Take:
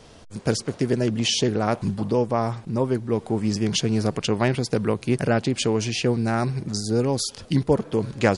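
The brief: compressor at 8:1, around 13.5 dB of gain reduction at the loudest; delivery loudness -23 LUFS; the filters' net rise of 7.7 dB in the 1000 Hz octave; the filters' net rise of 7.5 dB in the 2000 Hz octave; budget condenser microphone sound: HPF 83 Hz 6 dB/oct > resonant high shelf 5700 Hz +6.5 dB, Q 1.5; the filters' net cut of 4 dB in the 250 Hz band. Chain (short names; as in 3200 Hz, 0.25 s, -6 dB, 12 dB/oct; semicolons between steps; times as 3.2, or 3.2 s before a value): bell 250 Hz -5 dB; bell 1000 Hz +9 dB; bell 2000 Hz +7.5 dB; compressor 8:1, threshold -24 dBFS; HPF 83 Hz 6 dB/oct; resonant high shelf 5700 Hz +6.5 dB, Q 1.5; gain +6 dB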